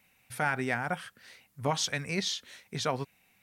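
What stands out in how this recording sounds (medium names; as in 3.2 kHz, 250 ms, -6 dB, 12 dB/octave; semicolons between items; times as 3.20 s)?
noise floor -69 dBFS; spectral tilt -3.5 dB/octave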